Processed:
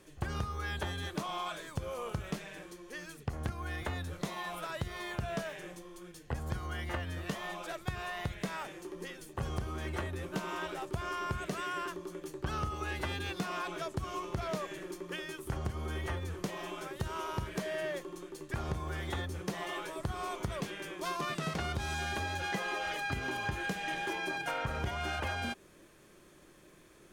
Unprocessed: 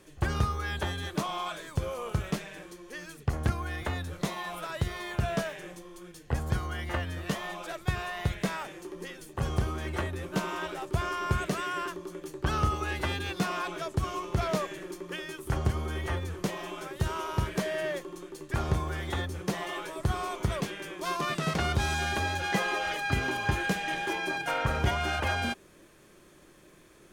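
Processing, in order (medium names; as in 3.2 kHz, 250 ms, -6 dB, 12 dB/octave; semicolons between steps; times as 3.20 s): compression, threshold -29 dBFS, peak gain reduction 8.5 dB; trim -2.5 dB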